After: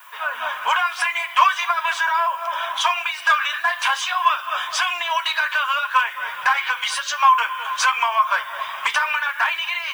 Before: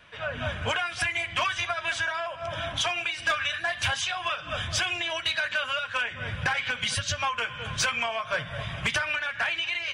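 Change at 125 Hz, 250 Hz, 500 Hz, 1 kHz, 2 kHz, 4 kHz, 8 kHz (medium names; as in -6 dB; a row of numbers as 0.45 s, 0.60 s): under -30 dB, under -15 dB, -0.5 dB, +14.0 dB, +6.5 dB, +4.0 dB, +3.5 dB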